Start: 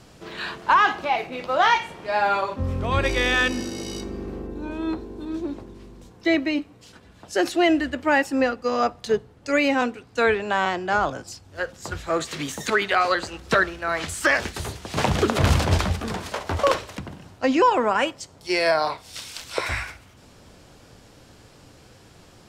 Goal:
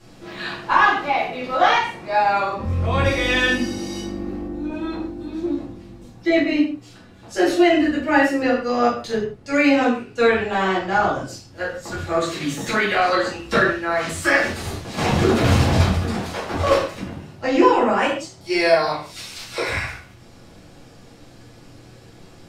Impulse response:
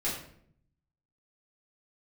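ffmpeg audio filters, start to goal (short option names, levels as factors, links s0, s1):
-filter_complex "[0:a]asettb=1/sr,asplit=3[s0][s1][s2];[s0]atrim=end=1.864[s3];[s1]atrim=start=1.86:end=2.59,asetpts=PTS-STARTPTS,afade=t=in:d=0.004:c=qsin,afade=t=out:st=0.726:d=0.004:c=qsin,bandreject=f=3200:w=9[s4];[s2]atrim=start=2.586[s5];[s3][s4]acrossfade=d=0.004:c1=hsin:c2=qsin[s6];[s6][s5]acrossfade=d=0.004:c1=qsin:c2=hsin[s7];[1:a]atrim=start_sample=2205,afade=t=out:st=0.23:d=0.01,atrim=end_sample=10584[s8];[s7][s8]afir=irnorm=-1:irlink=0,volume=0.668"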